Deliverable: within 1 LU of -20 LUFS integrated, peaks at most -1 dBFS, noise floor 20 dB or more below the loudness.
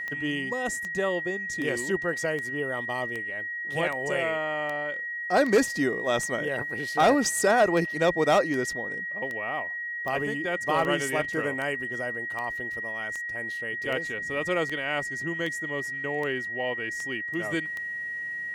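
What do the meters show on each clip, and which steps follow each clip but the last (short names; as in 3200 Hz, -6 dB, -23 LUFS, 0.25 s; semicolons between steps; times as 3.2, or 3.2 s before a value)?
clicks 25; steady tone 1900 Hz; tone level -31 dBFS; loudness -27.5 LUFS; peak -12.0 dBFS; loudness target -20.0 LUFS
-> de-click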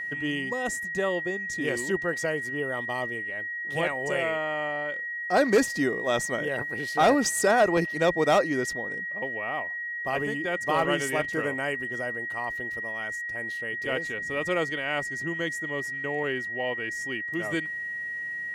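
clicks 0; steady tone 1900 Hz; tone level -31 dBFS
-> notch 1900 Hz, Q 30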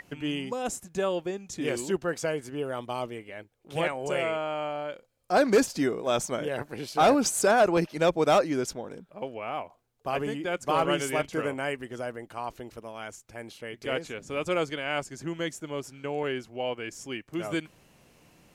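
steady tone none; loudness -29.0 LUFS; peak -13.0 dBFS; loudness target -20.0 LUFS
-> gain +9 dB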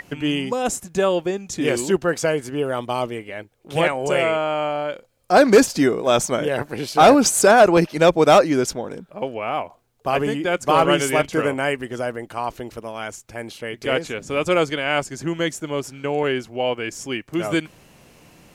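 loudness -20.0 LUFS; peak -4.0 dBFS; noise floor -54 dBFS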